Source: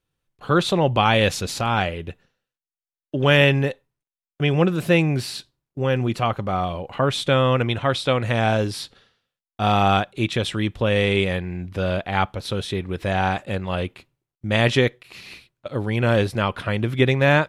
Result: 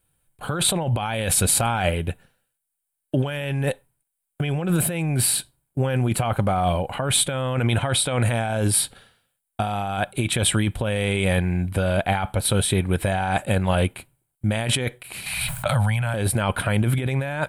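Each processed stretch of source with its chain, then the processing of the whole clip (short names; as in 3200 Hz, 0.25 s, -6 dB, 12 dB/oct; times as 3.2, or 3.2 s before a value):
15.26–16.14 Chebyshev band-stop 160–740 Hz + backwards sustainer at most 22 dB/s
whole clip: resonant high shelf 7300 Hz +8.5 dB, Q 3; comb 1.3 ms, depth 32%; negative-ratio compressor -24 dBFS, ratio -1; gain +2 dB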